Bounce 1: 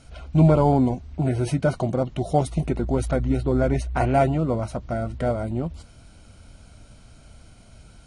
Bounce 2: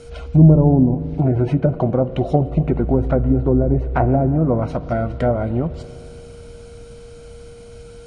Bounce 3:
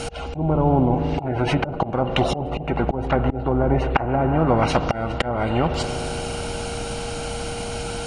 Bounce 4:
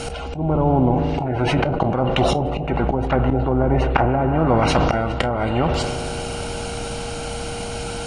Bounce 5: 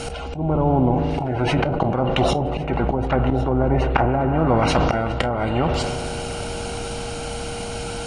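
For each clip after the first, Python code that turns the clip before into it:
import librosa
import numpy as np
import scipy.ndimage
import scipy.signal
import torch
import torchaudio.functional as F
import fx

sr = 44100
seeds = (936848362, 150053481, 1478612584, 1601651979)

y1 = x + 10.0 ** (-45.0 / 20.0) * np.sin(2.0 * np.pi * 470.0 * np.arange(len(x)) / sr)
y1 = fx.env_lowpass_down(y1, sr, base_hz=410.0, full_db=-16.0)
y1 = fx.rev_spring(y1, sr, rt60_s=3.0, pass_ms=(38, 57), chirp_ms=30, drr_db=15.0)
y1 = F.gain(torch.from_numpy(y1), 6.0).numpy()
y2 = fx.auto_swell(y1, sr, attack_ms=420.0)
y2 = fx.small_body(y2, sr, hz=(810.0, 2800.0), ring_ms=45, db=14)
y2 = fx.spectral_comp(y2, sr, ratio=2.0)
y2 = F.gain(torch.from_numpy(y2), 2.0).numpy()
y3 = fx.comb_fb(y2, sr, f0_hz=64.0, decay_s=0.2, harmonics='all', damping=0.0, mix_pct=30)
y3 = fx.sustainer(y3, sr, db_per_s=26.0)
y3 = F.gain(torch.from_numpy(y3), 2.0).numpy()
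y4 = y3 + 10.0 ** (-19.5 / 20.0) * np.pad(y3, (int(1106 * sr / 1000.0), 0))[:len(y3)]
y4 = F.gain(torch.from_numpy(y4), -1.0).numpy()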